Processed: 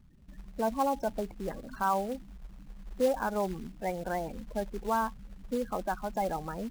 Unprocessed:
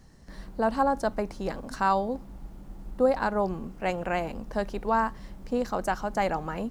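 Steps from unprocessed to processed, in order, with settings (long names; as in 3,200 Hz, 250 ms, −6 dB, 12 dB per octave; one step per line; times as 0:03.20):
0:01.46–0:02.20: hum removal 46.1 Hz, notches 8
gate on every frequency bin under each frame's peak −15 dB strong
floating-point word with a short mantissa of 2 bits
level −4 dB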